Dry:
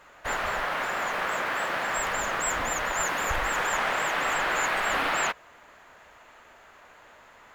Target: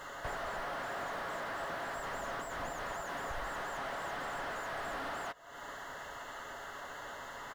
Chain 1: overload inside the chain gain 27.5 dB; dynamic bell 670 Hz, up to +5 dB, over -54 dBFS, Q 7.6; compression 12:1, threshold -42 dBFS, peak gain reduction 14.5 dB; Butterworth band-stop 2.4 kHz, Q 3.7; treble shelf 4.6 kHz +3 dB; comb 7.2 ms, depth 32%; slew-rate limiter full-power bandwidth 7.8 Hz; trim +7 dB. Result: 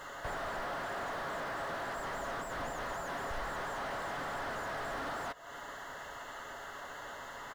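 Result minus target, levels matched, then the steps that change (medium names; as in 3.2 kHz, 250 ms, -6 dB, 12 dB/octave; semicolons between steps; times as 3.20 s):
overload inside the chain: distortion +36 dB
change: overload inside the chain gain 16 dB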